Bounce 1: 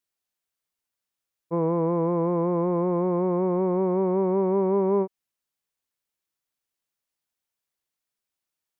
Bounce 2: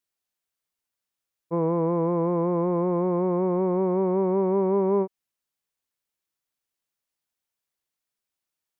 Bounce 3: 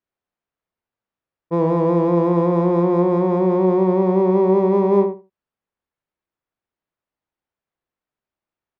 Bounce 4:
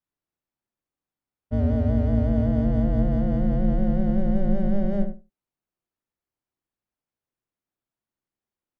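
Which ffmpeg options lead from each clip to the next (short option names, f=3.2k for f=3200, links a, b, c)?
-af anull
-filter_complex "[0:a]adynamicsmooth=sensitivity=7:basefreq=2k,asplit=2[a][b];[b]adelay=75,lowpass=f=1.5k:p=1,volume=-6dB,asplit=2[c][d];[d]adelay=75,lowpass=f=1.5k:p=1,volume=0.18,asplit=2[e][f];[f]adelay=75,lowpass=f=1.5k:p=1,volume=0.18[g];[a][c][e][g]amix=inputs=4:normalize=0,volume=6dB"
-af "afreqshift=-400,volume=-4dB"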